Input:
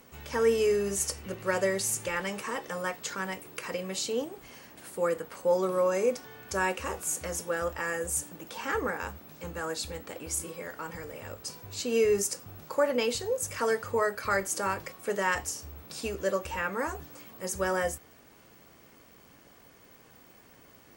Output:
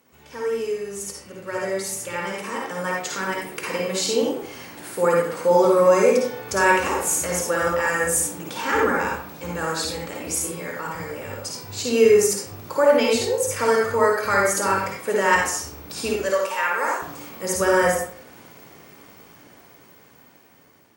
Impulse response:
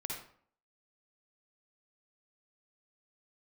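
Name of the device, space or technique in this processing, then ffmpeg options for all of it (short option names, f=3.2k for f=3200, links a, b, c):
far laptop microphone: -filter_complex "[0:a]asettb=1/sr,asplit=3[a][b][c];[a]atrim=end=16.224[d];[b]atrim=start=16.22:end=17.02,asetpts=PTS-STARTPTS,afade=t=in:d=0.004:c=qsin,afade=t=out:st=0.796:d=0.004:c=qsin,highpass=600[e];[c]atrim=start=17.016[f];[d][e]acrossfade=d=0.004:c1=hsin:c2=qsin[g];[g][f]acrossfade=d=0.004:c1=qsin:c2=hsin[h];[1:a]atrim=start_sample=2205[i];[h][i]afir=irnorm=-1:irlink=0,highpass=f=110:p=1,dynaudnorm=f=770:g=7:m=15dB,volume=-2.5dB"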